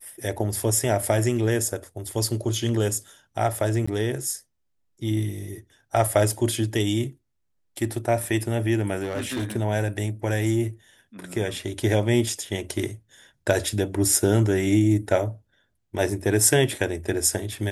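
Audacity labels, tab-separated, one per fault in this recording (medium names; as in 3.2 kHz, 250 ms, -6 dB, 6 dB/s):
3.860000	3.880000	dropout
8.980000	9.520000	clipped -23.5 dBFS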